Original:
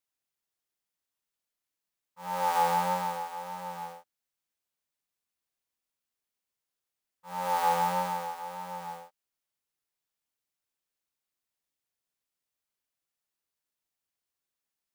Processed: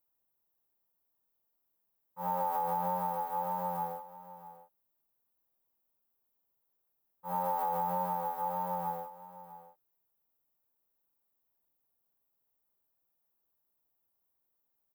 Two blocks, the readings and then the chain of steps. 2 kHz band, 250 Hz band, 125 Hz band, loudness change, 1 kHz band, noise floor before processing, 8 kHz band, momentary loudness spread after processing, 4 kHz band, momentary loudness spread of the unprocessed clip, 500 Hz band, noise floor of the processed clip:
-12.5 dB, -1.0 dB, -1.0 dB, -3.5 dB, -3.0 dB, under -85 dBFS, under -10 dB, 18 LU, under -15 dB, 16 LU, -2.0 dB, -80 dBFS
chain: EQ curve 890 Hz 0 dB, 2300 Hz -16 dB, 7500 Hz -18 dB, 15000 Hz +6 dB; limiter -21.5 dBFS, peak gain reduction 6.5 dB; compressor 5:1, threshold -37 dBFS, peak gain reduction 10 dB; echo 0.654 s -15.5 dB; gain +6.5 dB

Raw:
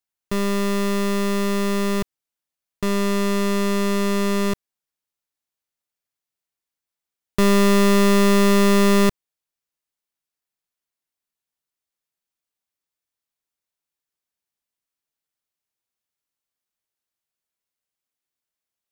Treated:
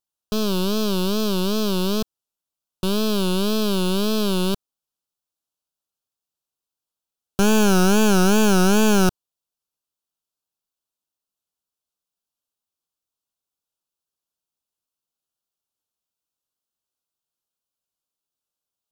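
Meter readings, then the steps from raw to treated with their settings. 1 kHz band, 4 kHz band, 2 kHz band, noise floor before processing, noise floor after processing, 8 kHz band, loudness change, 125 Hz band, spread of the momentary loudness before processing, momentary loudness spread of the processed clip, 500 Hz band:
-1.0 dB, +3.0 dB, -1.0 dB, under -85 dBFS, under -85 dBFS, +2.5 dB, -0.5 dB, +0.5 dB, 10 LU, 9 LU, -1.5 dB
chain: self-modulated delay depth 0.24 ms; wow and flutter 150 cents; Butterworth band-stop 2000 Hz, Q 1.7

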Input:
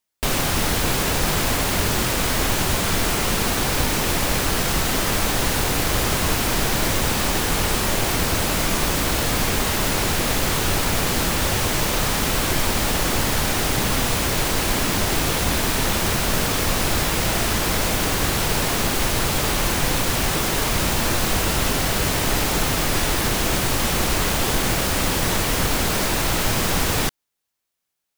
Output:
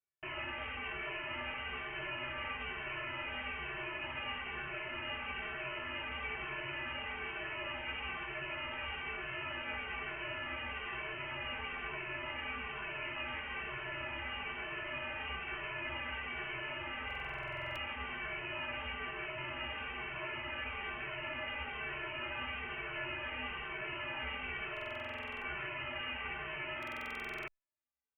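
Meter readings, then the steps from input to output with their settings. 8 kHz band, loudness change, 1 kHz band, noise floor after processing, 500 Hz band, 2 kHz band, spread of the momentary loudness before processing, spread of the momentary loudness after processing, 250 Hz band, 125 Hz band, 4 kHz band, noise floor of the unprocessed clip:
under -40 dB, -19.5 dB, -18.0 dB, -44 dBFS, -20.5 dB, -12.5 dB, 0 LU, 1 LU, -26.0 dB, -27.0 dB, -20.0 dB, -23 dBFS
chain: HPF 710 Hz 12 dB/oct; resonator bank F#3 major, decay 0.22 s; inverted band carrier 3400 Hz; stuck buffer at 17.06/24.72/26.78, samples 2048, times 14; endless flanger 2.2 ms -1.1 Hz; gain +3.5 dB

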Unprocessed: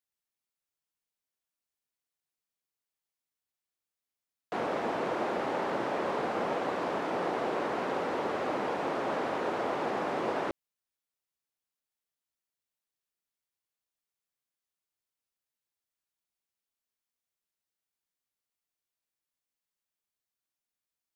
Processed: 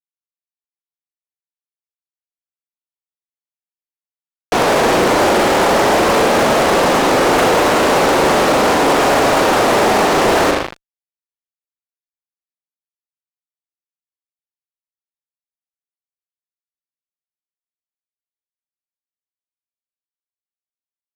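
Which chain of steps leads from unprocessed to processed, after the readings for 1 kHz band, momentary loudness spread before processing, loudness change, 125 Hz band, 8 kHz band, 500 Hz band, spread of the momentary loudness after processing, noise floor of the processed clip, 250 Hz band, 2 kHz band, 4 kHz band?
+19.0 dB, 1 LU, +19.5 dB, +21.0 dB, +32.0 dB, +18.5 dB, 2 LU, under -85 dBFS, +19.0 dB, +21.0 dB, +25.5 dB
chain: added harmonics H 3 -9 dB, 5 -24 dB, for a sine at -18 dBFS; spring tank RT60 1.1 s, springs 39 ms, chirp 25 ms, DRR 3.5 dB; fuzz box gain 49 dB, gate -49 dBFS; gain +3.5 dB

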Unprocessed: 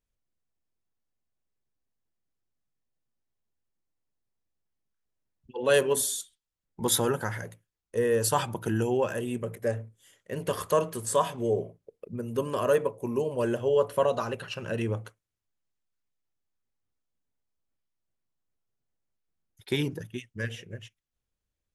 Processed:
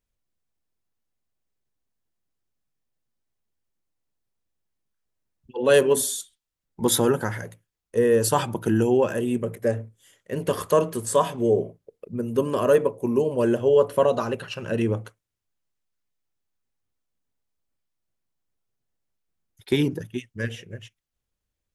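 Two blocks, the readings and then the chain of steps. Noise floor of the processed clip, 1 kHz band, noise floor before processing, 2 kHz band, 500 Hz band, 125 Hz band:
-83 dBFS, +3.5 dB, under -85 dBFS, +2.5 dB, +6.0 dB, +4.5 dB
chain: dynamic EQ 280 Hz, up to +6 dB, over -39 dBFS, Q 0.83; gain +2.5 dB

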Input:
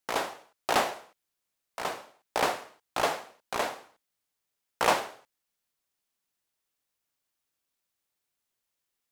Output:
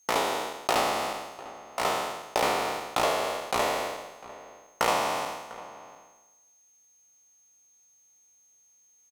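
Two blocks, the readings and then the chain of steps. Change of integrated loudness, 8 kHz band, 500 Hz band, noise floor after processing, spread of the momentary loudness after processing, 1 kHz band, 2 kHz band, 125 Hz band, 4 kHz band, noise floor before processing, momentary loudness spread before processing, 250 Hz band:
+2.5 dB, +4.0 dB, +4.0 dB, -63 dBFS, 18 LU, +3.5 dB, +2.0 dB, +4.5 dB, +4.0 dB, -84 dBFS, 17 LU, +4.0 dB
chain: spectral trails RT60 1.04 s; notch 1600 Hz, Q 8.5; compressor 4:1, threshold -29 dBFS, peak gain reduction 11.5 dB; whine 6400 Hz -66 dBFS; outdoor echo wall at 120 m, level -17 dB; gain +6 dB

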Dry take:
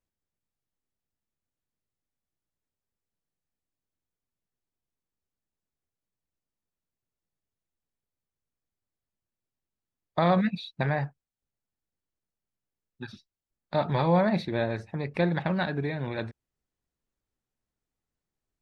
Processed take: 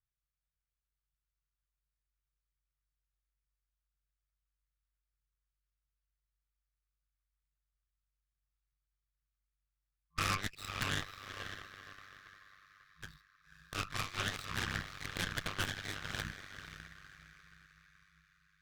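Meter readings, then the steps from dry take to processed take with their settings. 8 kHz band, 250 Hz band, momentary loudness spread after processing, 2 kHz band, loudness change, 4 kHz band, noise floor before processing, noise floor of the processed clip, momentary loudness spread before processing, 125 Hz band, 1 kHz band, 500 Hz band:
n/a, -19.0 dB, 18 LU, -2.5 dB, -11.0 dB, +2.0 dB, under -85 dBFS, under -85 dBFS, 16 LU, -14.0 dB, -11.0 dB, -21.5 dB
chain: median filter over 15 samples; FFT band-reject 110–1100 Hz; diffused feedback echo 0.543 s, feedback 50%, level -6.5 dB; ring modulator 49 Hz; added harmonics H 8 -9 dB, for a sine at -22.5 dBFS

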